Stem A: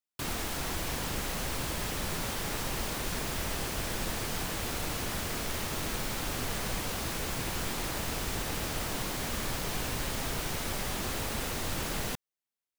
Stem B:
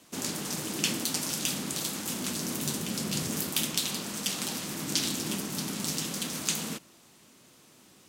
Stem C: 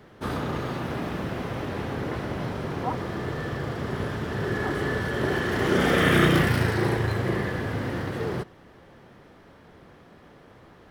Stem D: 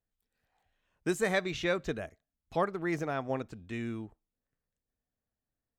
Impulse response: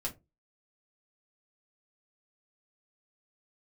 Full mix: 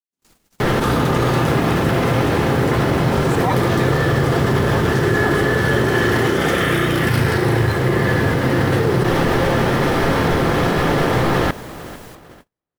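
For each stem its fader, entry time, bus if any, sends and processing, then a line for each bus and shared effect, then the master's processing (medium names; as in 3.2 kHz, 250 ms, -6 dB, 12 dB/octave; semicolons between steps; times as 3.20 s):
-10.0 dB, 0.00 s, no send, echo send -10 dB, none
-12.0 dB, 0.00 s, no send, no echo send, none
-3.0 dB, 0.60 s, send -6.5 dB, echo send -14.5 dB, level flattener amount 100%
+1.5 dB, 2.15 s, no send, no echo send, none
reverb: on, RT60 0.25 s, pre-delay 6 ms
echo: feedback delay 450 ms, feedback 49%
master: gate -38 dBFS, range -43 dB; treble shelf 9 kHz +4 dB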